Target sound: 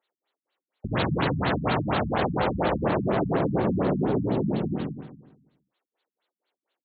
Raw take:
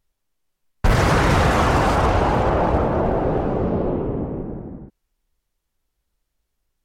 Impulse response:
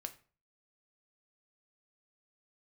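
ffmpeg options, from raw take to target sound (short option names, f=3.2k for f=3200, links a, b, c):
-filter_complex "[0:a]acrossover=split=390|2100[a][b][c];[a]acrusher=bits=6:mix=0:aa=0.000001[d];[d][b][c]amix=inputs=3:normalize=0,lowshelf=f=410:g=5.5,asoftclip=type=tanh:threshold=-22dB,highpass=140,lowpass=6.2k,equalizer=f=4k:w=1.3:g=8,asplit=2[e][f];[f]adelay=140,lowpass=f=2.9k:p=1,volume=-8dB,asplit=2[g][h];[h]adelay=140,lowpass=f=2.9k:p=1,volume=0.44,asplit=2[i][j];[j]adelay=140,lowpass=f=2.9k:p=1,volume=0.44,asplit=2[k][l];[l]adelay=140,lowpass=f=2.9k:p=1,volume=0.44,asplit=2[m][n];[n]adelay=140,lowpass=f=2.9k:p=1,volume=0.44[o];[e][g][i][k][m][o]amix=inputs=6:normalize=0,asplit=2[p][q];[1:a]atrim=start_sample=2205,atrim=end_sample=3528,adelay=88[r];[q][r]afir=irnorm=-1:irlink=0,volume=-1.5dB[s];[p][s]amix=inputs=2:normalize=0,acompressor=threshold=-22dB:ratio=6,afftfilt=real='re*lt(b*sr/1024,250*pow(4600/250,0.5+0.5*sin(2*PI*4.2*pts/sr)))':imag='im*lt(b*sr/1024,250*pow(4600/250,0.5+0.5*sin(2*PI*4.2*pts/sr)))':win_size=1024:overlap=0.75,volume=3dB"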